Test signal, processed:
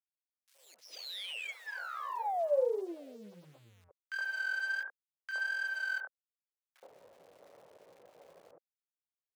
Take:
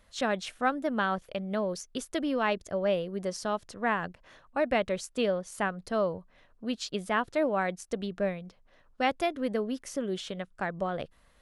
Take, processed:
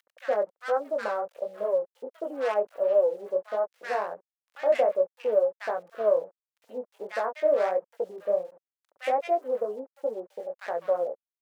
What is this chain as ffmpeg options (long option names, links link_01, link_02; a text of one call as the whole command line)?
ffmpeg -i in.wav -filter_complex "[0:a]afwtdn=0.0141,acrossover=split=2400[link_01][link_02];[link_01]acompressor=mode=upward:threshold=-40dB:ratio=2.5[link_03];[link_03][link_02]amix=inputs=2:normalize=0,aeval=exprs='0.237*(cos(1*acos(clip(val(0)/0.237,-1,1)))-cos(1*PI/2))+0.00335*(cos(2*acos(clip(val(0)/0.237,-1,1)))-cos(2*PI/2))+0.0119*(cos(6*acos(clip(val(0)/0.237,-1,1)))-cos(6*PI/2))':channel_layout=same,flanger=delay=17.5:depth=6.8:speed=1.4,adynamicsmooth=sensitivity=6.5:basefreq=1500,aeval=exprs='val(0)*gte(abs(val(0)),0.00211)':channel_layout=same,highpass=frequency=530:width_type=q:width=3.7,acrossover=split=1400[link_04][link_05];[link_04]adelay=70[link_06];[link_06][link_05]amix=inputs=2:normalize=0" out.wav